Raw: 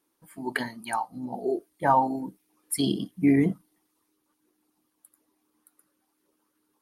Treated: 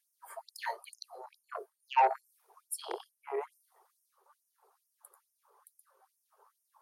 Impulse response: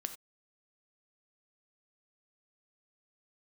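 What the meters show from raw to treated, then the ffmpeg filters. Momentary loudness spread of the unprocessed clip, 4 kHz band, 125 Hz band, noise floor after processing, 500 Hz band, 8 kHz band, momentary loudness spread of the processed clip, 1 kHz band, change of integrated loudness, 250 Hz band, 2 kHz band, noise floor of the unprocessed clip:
13 LU, -10.0 dB, under -40 dB, -81 dBFS, -9.0 dB, -8.5 dB, 21 LU, -5.0 dB, -8.5 dB, -32.0 dB, -8.5 dB, -76 dBFS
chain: -af "highshelf=f=1.6k:t=q:w=1.5:g=-13,areverse,acompressor=threshold=-32dB:ratio=8,areverse,aeval=exprs='0.075*(cos(1*acos(clip(val(0)/0.075,-1,1)))-cos(1*PI/2))+0.0211*(cos(5*acos(clip(val(0)/0.075,-1,1)))-cos(5*PI/2))+0.00668*(cos(7*acos(clip(val(0)/0.075,-1,1)))-cos(7*PI/2))':c=same,afftfilt=real='re*gte(b*sr/1024,350*pow(5300/350,0.5+0.5*sin(2*PI*2.3*pts/sr)))':imag='im*gte(b*sr/1024,350*pow(5300/350,0.5+0.5*sin(2*PI*2.3*pts/sr)))':win_size=1024:overlap=0.75,volume=7.5dB"

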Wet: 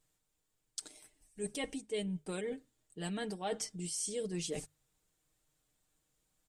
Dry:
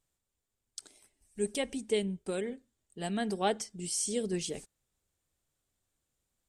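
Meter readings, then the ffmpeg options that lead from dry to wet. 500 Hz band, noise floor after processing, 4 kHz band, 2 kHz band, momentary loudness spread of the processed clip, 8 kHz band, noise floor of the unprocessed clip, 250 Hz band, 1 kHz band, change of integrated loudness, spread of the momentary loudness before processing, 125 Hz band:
-6.0 dB, -82 dBFS, -4.0 dB, -4.5 dB, 16 LU, -3.5 dB, -85 dBFS, -5.0 dB, -8.0 dB, -5.5 dB, 17 LU, -2.0 dB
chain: -af "bandreject=f=50:t=h:w=6,bandreject=f=100:t=h:w=6,bandreject=f=150:t=h:w=6,aecho=1:1:6.5:0.58,areverse,acompressor=threshold=-39dB:ratio=4,areverse,volume=2.5dB"

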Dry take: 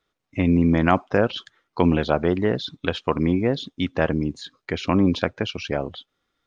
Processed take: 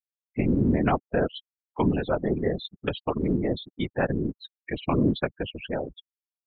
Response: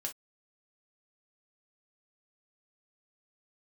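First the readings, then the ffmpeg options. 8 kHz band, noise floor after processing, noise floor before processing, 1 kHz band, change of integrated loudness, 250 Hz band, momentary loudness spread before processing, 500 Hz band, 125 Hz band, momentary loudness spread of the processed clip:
n/a, under -85 dBFS, -80 dBFS, -5.0 dB, -4.5 dB, -4.5 dB, 12 LU, -4.5 dB, -4.0 dB, 12 LU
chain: -af "adynamicequalizer=threshold=0.0224:dfrequency=1100:dqfactor=0.82:tfrequency=1100:tqfactor=0.82:attack=5:release=100:ratio=0.375:range=2:mode=cutabove:tftype=bell,afftfilt=real='re*gte(hypot(re,im),0.0631)':imag='im*gte(hypot(re,im),0.0631)':win_size=1024:overlap=0.75,afftfilt=real='hypot(re,im)*cos(2*PI*random(0))':imag='hypot(re,im)*sin(2*PI*random(1))':win_size=512:overlap=0.75,volume=2dB"

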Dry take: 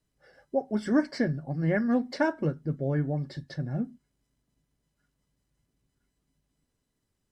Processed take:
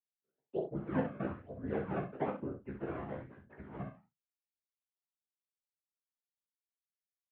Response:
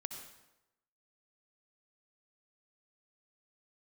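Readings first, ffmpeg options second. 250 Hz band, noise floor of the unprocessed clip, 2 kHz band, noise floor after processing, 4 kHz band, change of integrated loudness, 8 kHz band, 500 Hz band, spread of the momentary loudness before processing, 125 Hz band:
-12.0 dB, -80 dBFS, -13.0 dB, under -85 dBFS, under -15 dB, -10.5 dB, n/a, -8.0 dB, 8 LU, -13.0 dB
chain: -filter_complex "[0:a]bandreject=f=60:t=h:w=6,bandreject=f=120:t=h:w=6,bandreject=f=180:t=h:w=6,bandreject=f=240:t=h:w=6,bandreject=f=300:t=h:w=6,agate=range=-33dB:threshold=-43dB:ratio=3:detection=peak,acrusher=samples=25:mix=1:aa=0.000001:lfo=1:lforange=40:lforate=1.1,highshelf=f=2k:g=-11,afftfilt=real='hypot(re,im)*cos(2*PI*random(0))':imag='hypot(re,im)*sin(2*PI*random(1))':win_size=512:overlap=0.75,acrossover=split=260 2200:gain=0.126 1 0.224[a][b][c];[a][b][c]amix=inputs=3:normalize=0,asplit=2[d][e];[e]adelay=35,volume=-11dB[f];[d][f]amix=inputs=2:normalize=0,aecho=1:1:16|64:0.596|0.447,highpass=f=200:t=q:w=0.5412,highpass=f=200:t=q:w=1.307,lowpass=f=3.2k:t=q:w=0.5176,lowpass=f=3.2k:t=q:w=0.7071,lowpass=f=3.2k:t=q:w=1.932,afreqshift=-110,volume=-1.5dB"

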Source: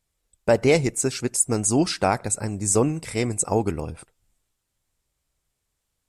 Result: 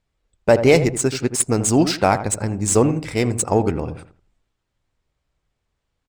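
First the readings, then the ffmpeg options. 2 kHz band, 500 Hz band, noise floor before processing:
+4.5 dB, +5.0 dB, -79 dBFS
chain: -filter_complex "[0:a]asplit=2[a][b];[b]adelay=82,lowpass=f=1.3k:p=1,volume=-10dB,asplit=2[c][d];[d]adelay=82,lowpass=f=1.3k:p=1,volume=0.3,asplit=2[e][f];[f]adelay=82,lowpass=f=1.3k:p=1,volume=0.3[g];[a][c][e][g]amix=inputs=4:normalize=0,adynamicsmooth=sensitivity=5.5:basefreq=4.1k,volume=4.5dB"

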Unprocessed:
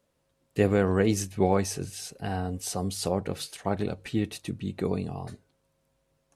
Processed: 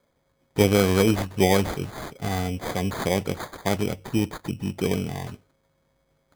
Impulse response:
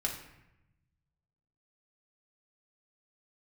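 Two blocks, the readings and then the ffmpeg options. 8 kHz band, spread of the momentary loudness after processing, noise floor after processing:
+1.0 dB, 13 LU, -70 dBFS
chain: -af "acrusher=samples=16:mix=1:aa=0.000001,volume=4dB"

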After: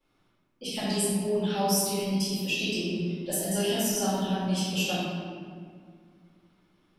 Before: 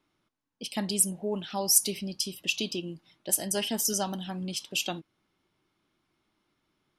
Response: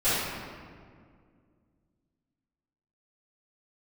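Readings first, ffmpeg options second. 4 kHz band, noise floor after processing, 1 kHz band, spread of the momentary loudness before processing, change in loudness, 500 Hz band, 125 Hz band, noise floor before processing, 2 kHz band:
+1.0 dB, -70 dBFS, +5.5 dB, 14 LU, +0.5 dB, +5.5 dB, +8.0 dB, -78 dBFS, +2.5 dB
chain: -filter_complex "[0:a]acompressor=threshold=-32dB:ratio=2.5[a];[1:a]atrim=start_sample=2205[b];[a][b]afir=irnorm=-1:irlink=0,volume=-7.5dB"

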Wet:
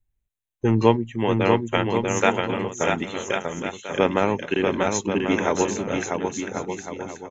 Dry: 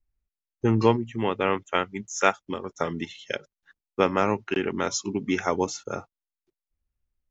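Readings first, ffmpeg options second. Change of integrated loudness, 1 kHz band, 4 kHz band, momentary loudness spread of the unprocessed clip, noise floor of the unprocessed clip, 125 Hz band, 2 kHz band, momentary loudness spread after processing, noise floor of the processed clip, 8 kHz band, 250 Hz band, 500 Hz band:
+3.0 dB, +3.0 dB, +3.5 dB, 12 LU, under -85 dBFS, +4.5 dB, +4.0 dB, 10 LU, -78 dBFS, n/a, +4.5 dB, +4.5 dB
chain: -af "superequalizer=10b=0.562:14b=0.316,tremolo=f=110:d=0.333,aecho=1:1:640|1088|1402|1621|1775:0.631|0.398|0.251|0.158|0.1,volume=4dB"

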